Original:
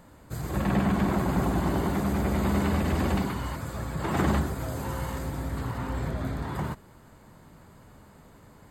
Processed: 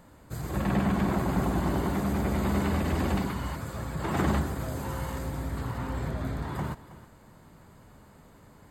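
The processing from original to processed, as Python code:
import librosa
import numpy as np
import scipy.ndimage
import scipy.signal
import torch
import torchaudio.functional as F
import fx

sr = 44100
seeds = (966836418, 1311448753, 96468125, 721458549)

y = x + 10.0 ** (-16.5 / 20.0) * np.pad(x, (int(320 * sr / 1000.0), 0))[:len(x)]
y = F.gain(torch.from_numpy(y), -1.5).numpy()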